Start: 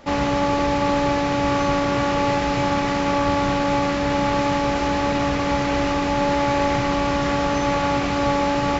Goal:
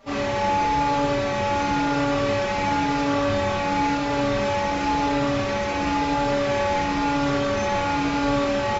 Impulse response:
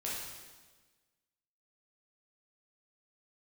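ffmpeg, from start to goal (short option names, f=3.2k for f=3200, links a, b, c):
-filter_complex "[1:a]atrim=start_sample=2205,atrim=end_sample=4410[a];[0:a][a]afir=irnorm=-1:irlink=0,asplit=2[b][c];[c]adelay=4.6,afreqshift=-0.96[d];[b][d]amix=inputs=2:normalize=1"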